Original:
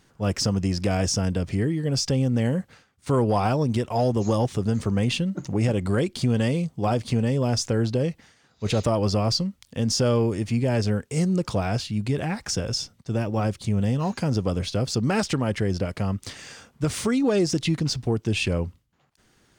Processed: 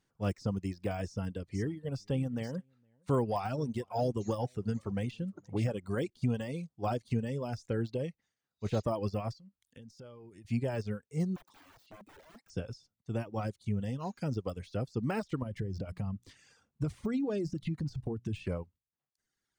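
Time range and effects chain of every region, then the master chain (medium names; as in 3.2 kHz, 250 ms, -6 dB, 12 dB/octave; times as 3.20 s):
1.03–6.10 s: delay 465 ms -16.5 dB + tape noise reduction on one side only decoder only
9.33–10.45 s: compression 12:1, threshold -30 dBFS + tape noise reduction on one side only encoder only
11.36–12.50 s: high-pass 190 Hz 24 dB/octave + integer overflow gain 28.5 dB
15.42–18.45 s: bass shelf 360 Hz +10 dB + hum notches 60/120/180/240 Hz + compression, threshold -20 dBFS
whole clip: de-esser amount 95%; reverb removal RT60 1.7 s; upward expansion 1.5:1, over -44 dBFS; trim -6 dB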